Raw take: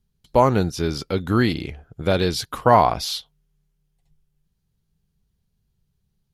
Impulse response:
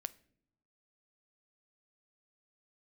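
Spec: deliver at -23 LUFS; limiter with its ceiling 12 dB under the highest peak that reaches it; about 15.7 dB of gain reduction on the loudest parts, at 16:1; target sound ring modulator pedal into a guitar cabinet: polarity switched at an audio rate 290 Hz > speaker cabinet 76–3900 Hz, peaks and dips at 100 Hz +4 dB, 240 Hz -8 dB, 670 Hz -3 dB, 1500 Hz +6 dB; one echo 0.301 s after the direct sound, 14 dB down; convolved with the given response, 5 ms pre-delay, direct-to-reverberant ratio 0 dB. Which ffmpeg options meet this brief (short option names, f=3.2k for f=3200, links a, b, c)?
-filter_complex "[0:a]acompressor=threshold=-25dB:ratio=16,alimiter=level_in=1dB:limit=-24dB:level=0:latency=1,volume=-1dB,aecho=1:1:301:0.2,asplit=2[a][b];[1:a]atrim=start_sample=2205,adelay=5[c];[b][c]afir=irnorm=-1:irlink=0,volume=2.5dB[d];[a][d]amix=inputs=2:normalize=0,aeval=exprs='val(0)*sgn(sin(2*PI*290*n/s))':c=same,highpass=76,equalizer=f=100:t=q:w=4:g=4,equalizer=f=240:t=q:w=4:g=-8,equalizer=f=670:t=q:w=4:g=-3,equalizer=f=1.5k:t=q:w=4:g=6,lowpass=f=3.9k:w=0.5412,lowpass=f=3.9k:w=1.3066,volume=10.5dB"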